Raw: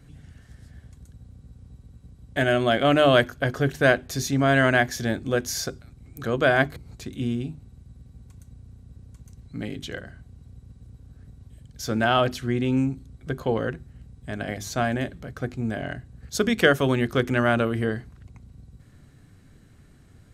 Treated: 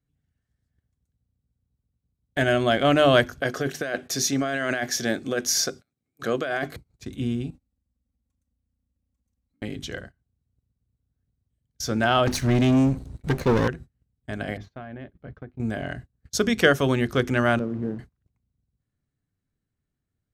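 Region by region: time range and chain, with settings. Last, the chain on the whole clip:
0:03.41–0:06.76: Bessel high-pass filter 260 Hz + notch filter 940 Hz, Q 5.4 + compressor whose output falls as the input rises −25 dBFS
0:07.50–0:09.62: comb filter 3.7 ms, depth 90% + downward compressor 5 to 1, threshold −44 dBFS
0:12.27–0:13.68: lower of the sound and its delayed copy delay 0.47 ms + leveller curve on the samples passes 2
0:14.57–0:15.60: downward compressor 12 to 1, threshold −32 dBFS + high-frequency loss of the air 340 metres
0:17.59–0:17.99: hold until the input has moved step −28.5 dBFS + resonant band-pass 220 Hz, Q 1.1
whole clip: dynamic equaliser 5,700 Hz, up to +6 dB, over −52 dBFS, Q 3.2; noise gate −38 dBFS, range −29 dB

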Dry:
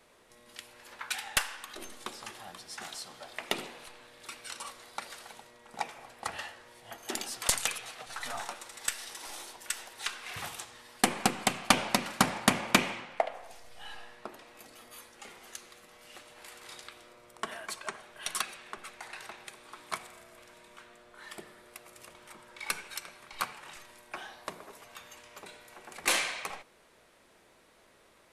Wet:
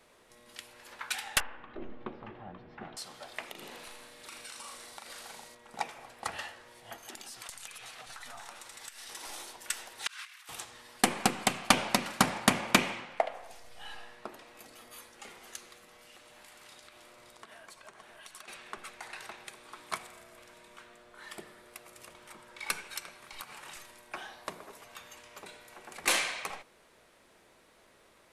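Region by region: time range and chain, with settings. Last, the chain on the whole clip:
0:01.40–0:02.97: low-pass filter 2,800 Hz 24 dB per octave + tilt shelving filter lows +9 dB, about 740 Hz
0:03.48–0:05.55: double-tracking delay 38 ms −5 dB + downward compressor 16 to 1, threshold −41 dBFS + delay with a high-pass on its return 82 ms, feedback 75%, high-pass 4,300 Hz, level −4.5 dB
0:06.99–0:09.09: parametric band 410 Hz −4 dB 1.9 octaves + downward compressor, threshold −42 dBFS
0:10.07–0:10.49: high-pass filter 1,200 Hz 24 dB per octave + compressor whose output falls as the input rises −48 dBFS, ratio −0.5
0:15.76–0:18.48: downward compressor 3 to 1, threshold −52 dBFS + single-tap delay 568 ms −6 dB
0:23.24–0:23.91: high-shelf EQ 6,300 Hz +6.5 dB + downward compressor, threshold −40 dBFS
whole clip: no processing

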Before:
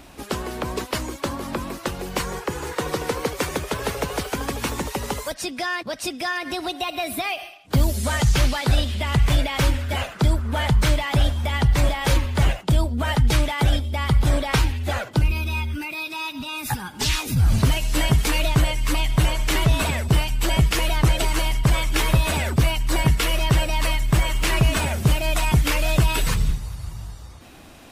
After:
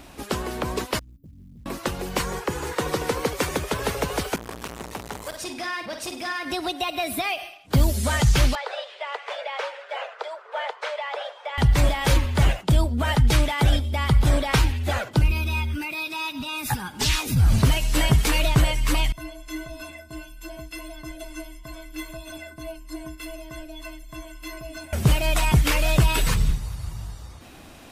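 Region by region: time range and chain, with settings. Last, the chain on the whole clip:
0:00.99–0:01.66: inverse Chebyshev band-stop filter 970–7,100 Hz, stop band 80 dB + floating-point word with a short mantissa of 4 bits + downward compressor, threshold −43 dBFS
0:04.36–0:06.45: tuned comb filter 53 Hz, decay 0.25 s, mix 50% + flutter between parallel walls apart 8.3 metres, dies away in 0.44 s + saturating transformer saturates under 1,700 Hz
0:08.55–0:11.58: Butterworth high-pass 450 Hz 72 dB per octave + head-to-tape spacing loss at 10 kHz 26 dB
0:19.12–0:24.93: stiff-string resonator 310 Hz, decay 0.3 s, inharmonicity 0.03 + flutter between parallel walls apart 11.6 metres, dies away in 0.21 s + one half of a high-frequency compander encoder only
whole clip: no processing

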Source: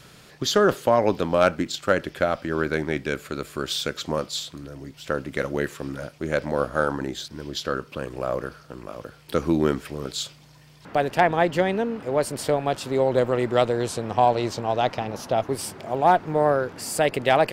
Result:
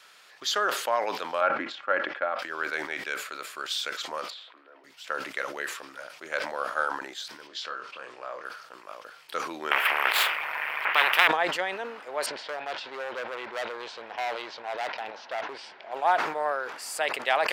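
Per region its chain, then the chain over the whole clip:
0:01.41–0:02.39: low-pass filter 1,700 Hz + comb filter 3.6 ms, depth 35%
0:04.30–0:04.84: high-pass filter 290 Hz 24 dB per octave + high-frequency loss of the air 450 metres
0:07.47–0:08.45: low-pass filter 6,400 Hz + downward compressor 1.5 to 1, threshold −33 dBFS + double-tracking delay 24 ms −6 dB
0:09.71–0:11.28: gain on one half-wave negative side −12 dB + drawn EQ curve 160 Hz 0 dB, 240 Hz −11 dB, 380 Hz +5 dB, 910 Hz +9 dB, 2,400 Hz +12 dB, 4,000 Hz −14 dB, 6,800 Hz −21 dB, 14,000 Hz 0 dB + every bin compressed towards the loudest bin 4 to 1
0:12.26–0:15.93: low-pass filter 4,500 Hz 24 dB per octave + parametric band 1,200 Hz −10 dB 0.23 octaves + hard clipping −21 dBFS
whole clip: high-pass filter 1,000 Hz 12 dB per octave; high-shelf EQ 4,600 Hz −7.5 dB; level that may fall only so fast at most 67 dB per second

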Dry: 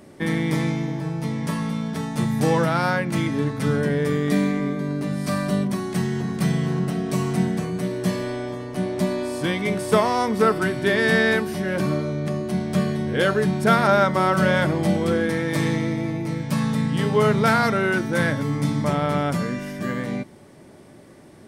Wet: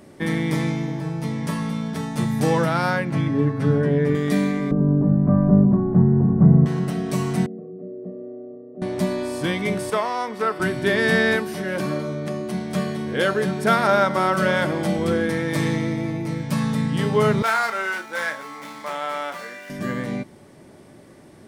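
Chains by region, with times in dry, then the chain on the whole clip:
0:03.10–0:04.15: low-pass filter 1,500 Hz 6 dB per octave + comb filter 7.3 ms, depth 63%
0:04.71–0:06.66: low-pass filter 1,200 Hz 24 dB per octave + spectral tilt −3.5 dB per octave
0:07.46–0:08.82: flat-topped band-pass 330 Hz, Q 1.9 + comb filter 1.6 ms, depth 83%
0:09.90–0:10.60: high-pass filter 790 Hz 6 dB per octave + high-shelf EQ 4,400 Hz −10.5 dB
0:11.36–0:14.99: high-pass filter 200 Hz 6 dB per octave + single-tap delay 214 ms −15.5 dB
0:17.42–0:19.70: running median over 9 samples + high-pass filter 790 Hz + double-tracking delay 31 ms −8 dB
whole clip: no processing

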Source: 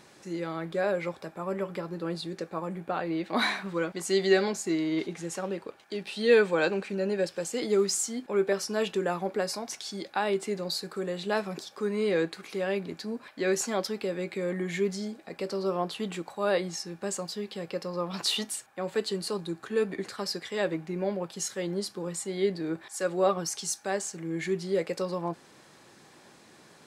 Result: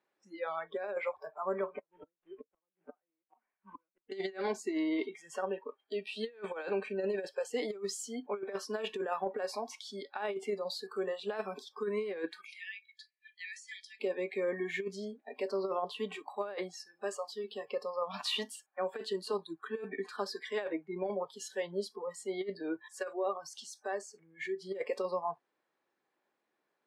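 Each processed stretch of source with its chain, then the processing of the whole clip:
0:01.74–0:04.12: variable-slope delta modulation 16 kbit/s + gate with flip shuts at −25 dBFS, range −32 dB
0:12.45–0:14.00: linear-phase brick-wall band-pass 1,700–11,000 Hz + downward compressor 5 to 1, threshold −38 dBFS
0:16.71–0:17.44: low-shelf EQ 290 Hz −6 dB + hum removal 175.6 Hz, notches 33
0:23.11–0:24.62: high-shelf EQ 10,000 Hz −4 dB + downward compressor 2 to 1, threshold −34 dBFS
whole clip: noise reduction from a noise print of the clip's start 26 dB; three-way crossover with the lows and the highs turned down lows −19 dB, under 270 Hz, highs −14 dB, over 3,100 Hz; compressor whose output falls as the input rises −31 dBFS, ratio −0.5; level −2 dB

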